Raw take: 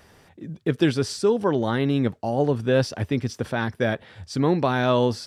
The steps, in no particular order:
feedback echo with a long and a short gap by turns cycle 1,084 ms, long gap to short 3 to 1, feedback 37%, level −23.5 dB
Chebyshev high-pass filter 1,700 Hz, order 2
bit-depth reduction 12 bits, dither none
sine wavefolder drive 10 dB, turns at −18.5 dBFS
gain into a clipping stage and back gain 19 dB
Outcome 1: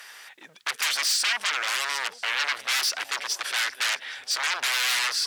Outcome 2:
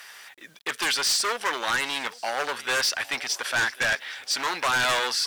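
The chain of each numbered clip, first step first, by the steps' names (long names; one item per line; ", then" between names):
feedback echo with a long and a short gap by turns, then sine wavefolder, then gain into a clipping stage and back, then Chebyshev high-pass filter, then bit-depth reduction
feedback echo with a long and a short gap by turns, then gain into a clipping stage and back, then Chebyshev high-pass filter, then bit-depth reduction, then sine wavefolder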